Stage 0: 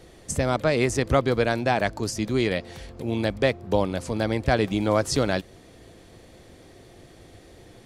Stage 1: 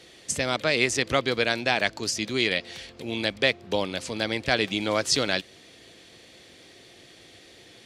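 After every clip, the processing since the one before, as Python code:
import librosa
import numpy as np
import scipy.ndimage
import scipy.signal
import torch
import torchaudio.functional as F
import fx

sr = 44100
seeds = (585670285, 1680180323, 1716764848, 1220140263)

y = fx.weighting(x, sr, curve='D')
y = F.gain(torch.from_numpy(y), -3.5).numpy()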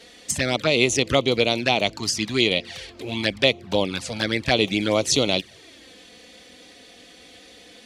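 y = fx.env_flanger(x, sr, rest_ms=4.6, full_db=-21.0)
y = F.gain(torch.from_numpy(y), 6.5).numpy()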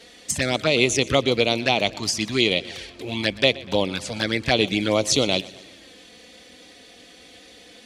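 y = fx.echo_feedback(x, sr, ms=122, feedback_pct=55, wet_db=-20)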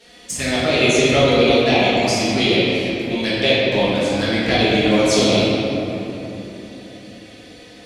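y = fx.room_shoebox(x, sr, seeds[0], volume_m3=180.0, walls='hard', distance_m=1.4)
y = F.gain(torch.from_numpy(y), -5.0).numpy()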